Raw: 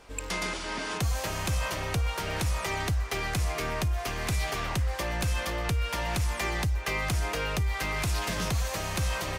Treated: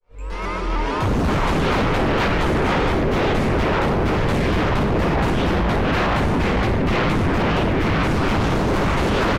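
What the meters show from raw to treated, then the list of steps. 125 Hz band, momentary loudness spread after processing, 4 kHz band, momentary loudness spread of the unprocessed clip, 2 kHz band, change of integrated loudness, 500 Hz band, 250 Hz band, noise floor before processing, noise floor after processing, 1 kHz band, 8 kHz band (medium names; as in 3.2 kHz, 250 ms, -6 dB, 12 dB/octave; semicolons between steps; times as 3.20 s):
+9.0 dB, 1 LU, +5.5 dB, 2 LU, +8.5 dB, +10.5 dB, +14.5 dB, +18.0 dB, -36 dBFS, -25 dBFS, +12.5 dB, -4.0 dB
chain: fade-in on the opening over 1.82 s; tone controls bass -10 dB, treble -5 dB; echo from a far wall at 80 m, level -9 dB; gain riding within 5 dB 2 s; tilt EQ -3.5 dB/octave; comb 2.2 ms, depth 32%; simulated room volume 500 m³, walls mixed, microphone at 5.7 m; sine folder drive 6 dB, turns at -7.5 dBFS; vibrato with a chosen wave saw up 6.6 Hz, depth 100 cents; trim -8 dB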